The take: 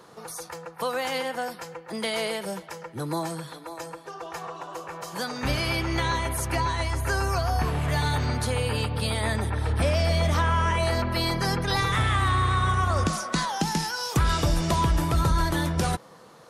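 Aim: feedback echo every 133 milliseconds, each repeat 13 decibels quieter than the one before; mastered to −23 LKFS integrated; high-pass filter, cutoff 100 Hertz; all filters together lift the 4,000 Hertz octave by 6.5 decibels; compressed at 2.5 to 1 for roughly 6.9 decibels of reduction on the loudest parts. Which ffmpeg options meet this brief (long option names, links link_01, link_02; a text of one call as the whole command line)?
ffmpeg -i in.wav -af "highpass=100,equalizer=frequency=4000:width_type=o:gain=8,acompressor=threshold=-30dB:ratio=2.5,aecho=1:1:133|266|399:0.224|0.0493|0.0108,volume=8dB" out.wav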